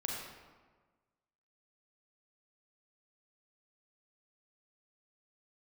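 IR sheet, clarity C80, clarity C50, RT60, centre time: 2.5 dB, 0.0 dB, 1.4 s, 76 ms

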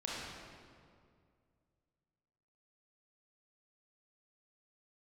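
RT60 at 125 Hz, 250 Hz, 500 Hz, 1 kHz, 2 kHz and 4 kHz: 2.8, 2.5, 2.3, 2.0, 1.7, 1.4 s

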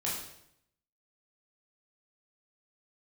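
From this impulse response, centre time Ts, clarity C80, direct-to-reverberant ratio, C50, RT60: 51 ms, 6.0 dB, -6.5 dB, 2.5 dB, 0.75 s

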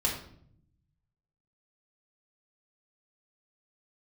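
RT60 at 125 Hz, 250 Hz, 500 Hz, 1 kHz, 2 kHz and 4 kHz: 1.6, 1.1, 0.70, 0.55, 0.50, 0.45 s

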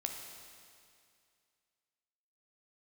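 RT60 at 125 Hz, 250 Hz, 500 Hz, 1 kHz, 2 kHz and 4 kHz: 2.3, 2.3, 2.3, 2.3, 2.3, 2.3 s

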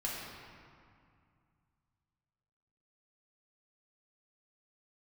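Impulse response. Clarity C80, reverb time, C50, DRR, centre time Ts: 1.0 dB, 2.2 s, -1.0 dB, -5.5 dB, 0.117 s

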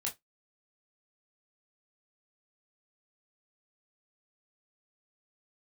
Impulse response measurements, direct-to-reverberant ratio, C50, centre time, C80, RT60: -2.5 dB, 17.0 dB, 18 ms, 29.0 dB, not exponential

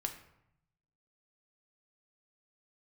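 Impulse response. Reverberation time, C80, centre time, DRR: 0.80 s, 12.5 dB, 14 ms, 4.0 dB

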